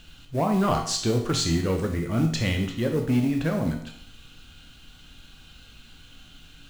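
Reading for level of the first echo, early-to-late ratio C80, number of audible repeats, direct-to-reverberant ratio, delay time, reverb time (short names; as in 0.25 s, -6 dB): none, 10.0 dB, none, 2.5 dB, none, 0.65 s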